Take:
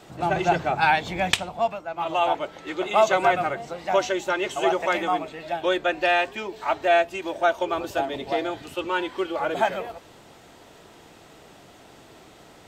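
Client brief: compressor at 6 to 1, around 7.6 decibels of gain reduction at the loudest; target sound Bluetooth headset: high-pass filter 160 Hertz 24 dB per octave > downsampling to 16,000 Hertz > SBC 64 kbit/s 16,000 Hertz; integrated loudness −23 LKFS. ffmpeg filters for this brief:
ffmpeg -i in.wav -af "acompressor=threshold=-21dB:ratio=6,highpass=frequency=160:width=0.5412,highpass=frequency=160:width=1.3066,aresample=16000,aresample=44100,volume=5dB" -ar 16000 -c:a sbc -b:a 64k out.sbc

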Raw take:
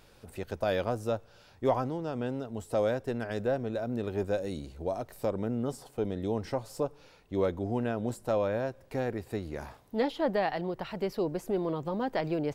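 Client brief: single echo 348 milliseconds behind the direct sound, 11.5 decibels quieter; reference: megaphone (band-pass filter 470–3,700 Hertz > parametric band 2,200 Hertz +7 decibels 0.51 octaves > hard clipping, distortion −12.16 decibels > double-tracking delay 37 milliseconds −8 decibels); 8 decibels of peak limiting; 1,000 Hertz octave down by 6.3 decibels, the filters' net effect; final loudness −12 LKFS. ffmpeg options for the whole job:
ffmpeg -i in.wav -filter_complex "[0:a]equalizer=frequency=1000:width_type=o:gain=-9,alimiter=level_in=1dB:limit=-24dB:level=0:latency=1,volume=-1dB,highpass=470,lowpass=3700,equalizer=frequency=2200:width_type=o:width=0.51:gain=7,aecho=1:1:348:0.266,asoftclip=type=hard:threshold=-34.5dB,asplit=2[link_01][link_02];[link_02]adelay=37,volume=-8dB[link_03];[link_01][link_03]amix=inputs=2:normalize=0,volume=29dB" out.wav

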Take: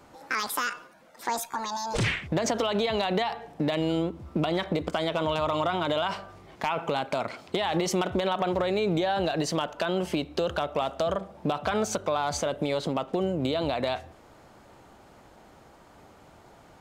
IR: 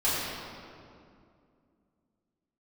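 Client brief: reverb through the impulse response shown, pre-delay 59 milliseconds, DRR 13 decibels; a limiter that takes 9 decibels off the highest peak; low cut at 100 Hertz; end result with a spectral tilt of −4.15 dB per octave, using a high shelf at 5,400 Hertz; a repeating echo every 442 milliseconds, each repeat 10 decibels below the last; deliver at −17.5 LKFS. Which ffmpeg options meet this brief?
-filter_complex "[0:a]highpass=100,highshelf=frequency=5400:gain=3,alimiter=limit=-22dB:level=0:latency=1,aecho=1:1:442|884|1326|1768:0.316|0.101|0.0324|0.0104,asplit=2[link_01][link_02];[1:a]atrim=start_sample=2205,adelay=59[link_03];[link_02][link_03]afir=irnorm=-1:irlink=0,volume=-25.5dB[link_04];[link_01][link_04]amix=inputs=2:normalize=0,volume=15dB"

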